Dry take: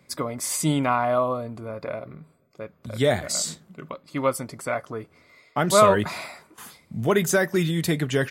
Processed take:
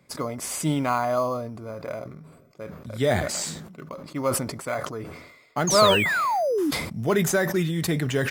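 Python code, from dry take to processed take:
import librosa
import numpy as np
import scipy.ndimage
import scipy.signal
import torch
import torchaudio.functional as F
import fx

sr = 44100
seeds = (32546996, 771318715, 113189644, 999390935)

p1 = fx.high_shelf(x, sr, hz=2200.0, db=-7.0, at=(3.88, 4.42))
p2 = fx.spec_paint(p1, sr, seeds[0], shape='fall', start_s=5.67, length_s=1.04, low_hz=270.0, high_hz=6800.0, level_db=-21.0)
p3 = fx.sample_hold(p2, sr, seeds[1], rate_hz=5500.0, jitter_pct=0)
p4 = p2 + (p3 * 10.0 ** (-11.5 / 20.0))
p5 = fx.sustainer(p4, sr, db_per_s=55.0)
y = p5 * 10.0 ** (-4.0 / 20.0)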